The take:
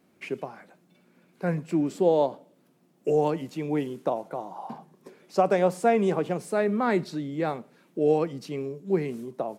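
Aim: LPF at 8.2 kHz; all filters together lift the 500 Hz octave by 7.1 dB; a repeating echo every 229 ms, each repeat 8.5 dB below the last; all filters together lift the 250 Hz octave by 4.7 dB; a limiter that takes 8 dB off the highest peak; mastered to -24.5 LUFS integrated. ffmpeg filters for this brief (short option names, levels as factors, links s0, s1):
-af "lowpass=8200,equalizer=f=250:t=o:g=3.5,equalizer=f=500:t=o:g=7.5,alimiter=limit=0.282:level=0:latency=1,aecho=1:1:229|458|687|916:0.376|0.143|0.0543|0.0206,volume=0.794"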